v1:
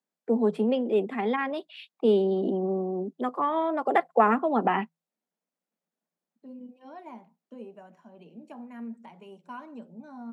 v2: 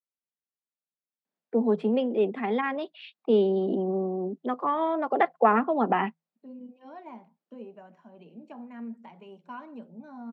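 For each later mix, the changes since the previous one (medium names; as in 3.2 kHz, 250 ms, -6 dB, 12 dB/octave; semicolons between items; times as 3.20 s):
first voice: entry +1.25 s; master: add low-pass 4.6 kHz 12 dB/octave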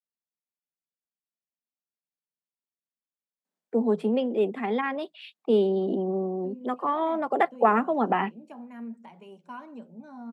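first voice: entry +2.20 s; master: remove low-pass 4.6 kHz 12 dB/octave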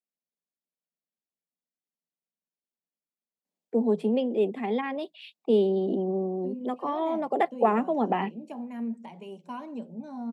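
second voice +6.0 dB; master: add peaking EQ 1.4 kHz -10 dB 0.81 oct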